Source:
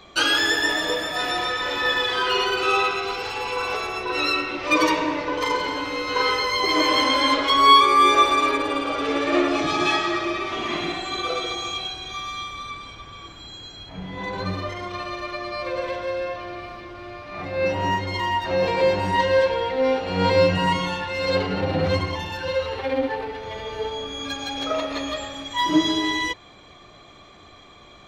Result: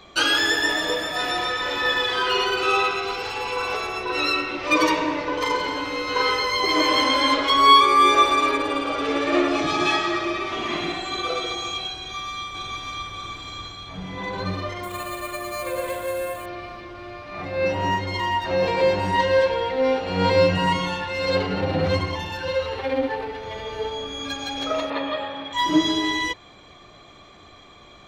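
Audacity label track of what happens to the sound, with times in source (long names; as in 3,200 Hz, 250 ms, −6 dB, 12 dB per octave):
11.950000	13.130000	delay throw 590 ms, feedback 45%, level −1.5 dB
14.830000	16.460000	bad sample-rate conversion rate divided by 4×, down filtered, up hold
24.900000	25.530000	loudspeaker in its box 120–3,700 Hz, peaks and dips at 510 Hz +6 dB, 920 Hz +9 dB, 1,600 Hz +4 dB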